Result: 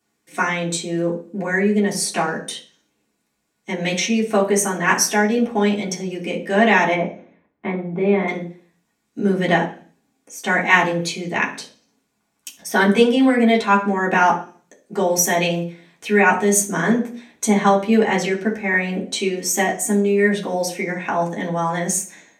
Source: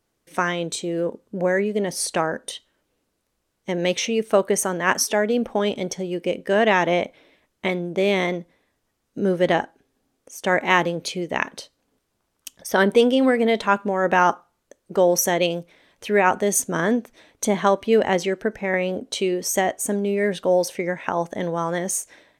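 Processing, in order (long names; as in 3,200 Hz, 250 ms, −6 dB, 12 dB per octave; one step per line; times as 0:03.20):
0:06.94–0:08.28: low-pass filter 1,300 Hz 12 dB per octave
convolution reverb RT60 0.45 s, pre-delay 3 ms, DRR −5.5 dB
level −1 dB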